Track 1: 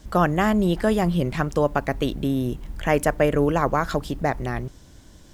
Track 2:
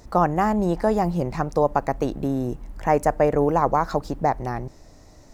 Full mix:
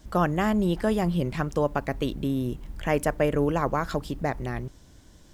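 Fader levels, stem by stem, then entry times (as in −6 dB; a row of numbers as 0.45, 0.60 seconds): −4.5, −18.5 decibels; 0.00, 0.00 seconds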